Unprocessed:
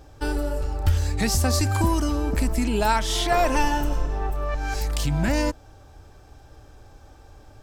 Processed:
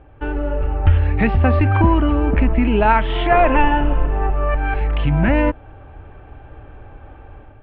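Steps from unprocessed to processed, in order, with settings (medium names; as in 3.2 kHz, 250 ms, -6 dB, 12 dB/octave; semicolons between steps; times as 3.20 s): level rider gain up to 7.5 dB; steep low-pass 2.9 kHz 48 dB/octave; trim +1.5 dB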